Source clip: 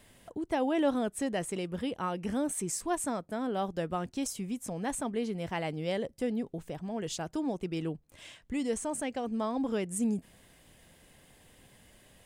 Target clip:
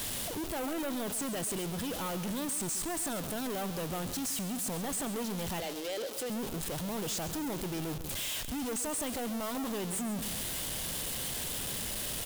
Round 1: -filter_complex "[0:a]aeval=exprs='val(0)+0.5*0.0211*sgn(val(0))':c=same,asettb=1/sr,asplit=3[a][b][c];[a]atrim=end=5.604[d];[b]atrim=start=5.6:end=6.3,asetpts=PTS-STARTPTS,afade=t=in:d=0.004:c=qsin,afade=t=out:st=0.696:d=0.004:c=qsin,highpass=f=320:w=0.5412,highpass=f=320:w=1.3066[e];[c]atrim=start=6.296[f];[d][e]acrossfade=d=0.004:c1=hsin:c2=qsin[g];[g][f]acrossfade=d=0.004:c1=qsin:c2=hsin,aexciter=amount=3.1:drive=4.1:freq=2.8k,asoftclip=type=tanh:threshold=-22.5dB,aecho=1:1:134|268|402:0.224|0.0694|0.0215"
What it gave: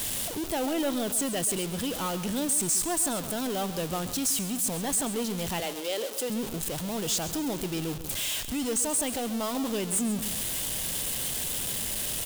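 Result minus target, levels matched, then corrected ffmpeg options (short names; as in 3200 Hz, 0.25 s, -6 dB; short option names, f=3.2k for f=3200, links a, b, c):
soft clip: distortion -7 dB
-filter_complex "[0:a]aeval=exprs='val(0)+0.5*0.0211*sgn(val(0))':c=same,asettb=1/sr,asplit=3[a][b][c];[a]atrim=end=5.604[d];[b]atrim=start=5.6:end=6.3,asetpts=PTS-STARTPTS,afade=t=in:d=0.004:c=qsin,afade=t=out:st=0.696:d=0.004:c=qsin,highpass=f=320:w=0.5412,highpass=f=320:w=1.3066[e];[c]atrim=start=6.296[f];[d][e]acrossfade=d=0.004:c1=hsin:c2=qsin[g];[g][f]acrossfade=d=0.004:c1=qsin:c2=hsin,aexciter=amount=3.1:drive=4.1:freq=2.8k,asoftclip=type=tanh:threshold=-33.5dB,aecho=1:1:134|268|402:0.224|0.0694|0.0215"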